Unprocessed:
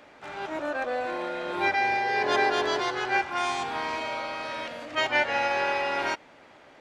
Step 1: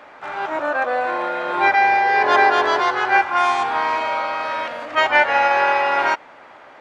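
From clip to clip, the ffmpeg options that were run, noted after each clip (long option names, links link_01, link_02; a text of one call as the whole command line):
ffmpeg -i in.wav -af "equalizer=frequency=1100:width_type=o:width=2.4:gain=12.5" out.wav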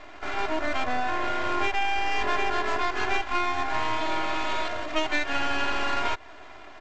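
ffmpeg -i in.wav -af "aresample=16000,aeval=exprs='max(val(0),0)':channel_layout=same,aresample=44100,aecho=1:1:2.9:0.78,acompressor=threshold=-21dB:ratio=6" out.wav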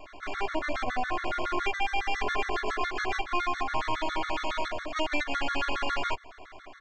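ffmpeg -i in.wav -af "afftfilt=real='re*gt(sin(2*PI*7.2*pts/sr)*(1-2*mod(floor(b*sr/1024/1100),2)),0)':imag='im*gt(sin(2*PI*7.2*pts/sr)*(1-2*mod(floor(b*sr/1024/1100),2)),0)':win_size=1024:overlap=0.75" out.wav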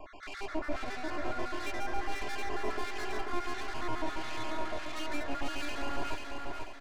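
ffmpeg -i in.wav -filter_complex "[0:a]acrossover=split=510[link_01][link_02];[link_02]asoftclip=type=tanh:threshold=-36dB[link_03];[link_01][link_03]amix=inputs=2:normalize=0,acrossover=split=1700[link_04][link_05];[link_04]aeval=exprs='val(0)*(1-0.7/2+0.7/2*cos(2*PI*1.5*n/s))':channel_layout=same[link_06];[link_05]aeval=exprs='val(0)*(1-0.7/2-0.7/2*cos(2*PI*1.5*n/s))':channel_layout=same[link_07];[link_06][link_07]amix=inputs=2:normalize=0,aecho=1:1:488|976|1464|1952|2440:0.631|0.252|0.101|0.0404|0.0162" out.wav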